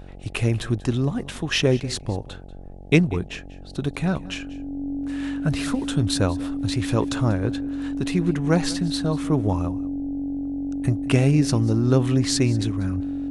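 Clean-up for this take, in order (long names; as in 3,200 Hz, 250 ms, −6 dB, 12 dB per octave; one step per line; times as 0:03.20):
hum removal 46.3 Hz, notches 18
notch filter 280 Hz, Q 30
echo removal 190 ms −19.5 dB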